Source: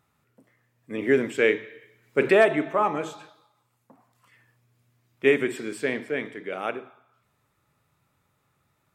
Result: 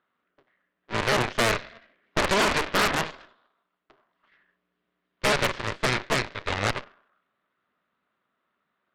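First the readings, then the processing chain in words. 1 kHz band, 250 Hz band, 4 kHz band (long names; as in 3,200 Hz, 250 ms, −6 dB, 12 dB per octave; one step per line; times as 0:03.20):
+3.0 dB, −4.0 dB, +11.5 dB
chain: sub-harmonics by changed cycles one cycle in 2, inverted
brickwall limiter −16.5 dBFS, peak gain reduction 8.5 dB
loudspeaker in its box 310–3,200 Hz, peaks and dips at 320 Hz −5 dB, 480 Hz −6 dB, 840 Hz −9 dB, 2,400 Hz −7 dB
harmonic generator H 3 −21 dB, 7 −27 dB, 8 −11 dB, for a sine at −16.5 dBFS
level +6.5 dB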